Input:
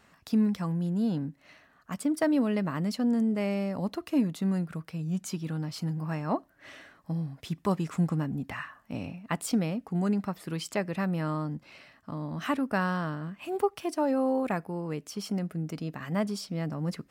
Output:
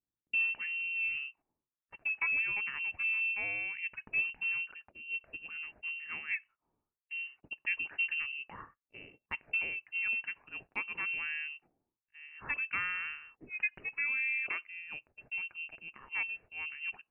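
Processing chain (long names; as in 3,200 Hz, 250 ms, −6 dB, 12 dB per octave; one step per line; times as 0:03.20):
voice inversion scrambler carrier 2,900 Hz
low-shelf EQ 110 Hz −5.5 dB
low-pass that shuts in the quiet parts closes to 320 Hz, open at −23.5 dBFS
low-shelf EQ 230 Hz +6 dB
noise gate −50 dBFS, range −19 dB
level −7 dB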